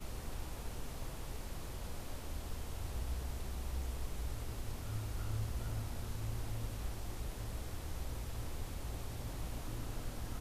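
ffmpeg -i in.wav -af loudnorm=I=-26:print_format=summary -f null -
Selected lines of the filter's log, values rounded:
Input Integrated:    -44.2 LUFS
Input True Peak:     -26.4 dBTP
Input LRA:             2.2 LU
Input Threshold:     -54.2 LUFS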